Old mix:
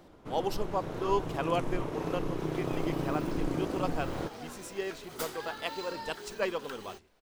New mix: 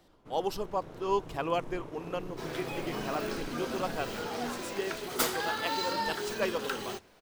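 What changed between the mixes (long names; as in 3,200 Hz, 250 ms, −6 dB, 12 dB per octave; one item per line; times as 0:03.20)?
first sound −9.0 dB
second sound +9.5 dB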